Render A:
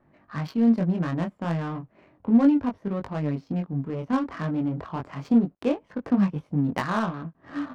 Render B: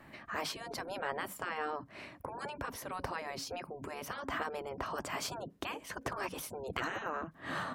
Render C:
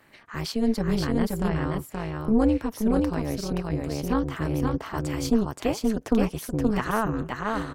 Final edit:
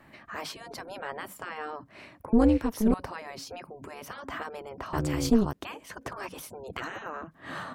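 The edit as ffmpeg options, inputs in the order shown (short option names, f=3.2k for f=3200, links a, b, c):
-filter_complex "[2:a]asplit=2[a][b];[1:a]asplit=3[c][d][e];[c]atrim=end=2.332[f];[a]atrim=start=2.328:end=2.942[g];[d]atrim=start=2.938:end=4.932[h];[b]atrim=start=4.928:end=5.532[i];[e]atrim=start=5.528[j];[f][g]acrossfade=d=0.004:c1=hsin:c2=hsin[k];[k][h]acrossfade=d=0.004:c1=hsin:c2=hsin[l];[l][i]acrossfade=d=0.004:c1=hsin:c2=hsin[m];[m][j]acrossfade=d=0.004:c1=hsin:c2=hsin"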